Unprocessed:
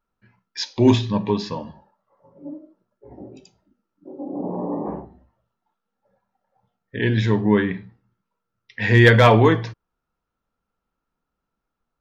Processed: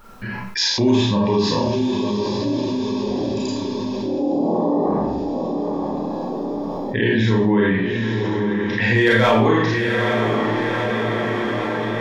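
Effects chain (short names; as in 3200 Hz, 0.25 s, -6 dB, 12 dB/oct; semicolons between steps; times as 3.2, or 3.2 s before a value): on a send: diffused feedback echo 0.891 s, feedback 47%, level -14.5 dB; on the sum: Schroeder reverb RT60 0.43 s, combs from 28 ms, DRR -3.5 dB; fast leveller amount 70%; gain -8.5 dB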